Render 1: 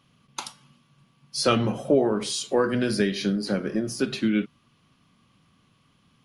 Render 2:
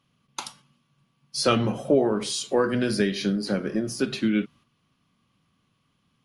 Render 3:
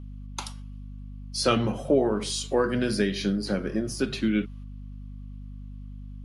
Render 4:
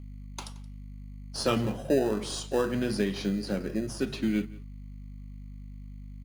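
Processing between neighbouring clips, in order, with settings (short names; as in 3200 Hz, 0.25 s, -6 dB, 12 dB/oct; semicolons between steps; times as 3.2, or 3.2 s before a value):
gate -50 dBFS, range -7 dB
hum 50 Hz, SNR 11 dB; gain -1.5 dB
in parallel at -8.5 dB: sample-rate reducer 2200 Hz, jitter 0%; on the sum: echo 0.174 s -21 dB; gain -5.5 dB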